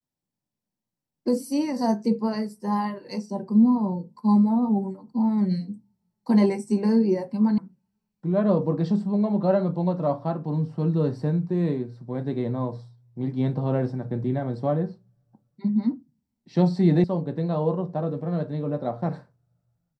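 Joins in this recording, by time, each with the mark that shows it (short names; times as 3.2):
7.58 sound cut off
17.04 sound cut off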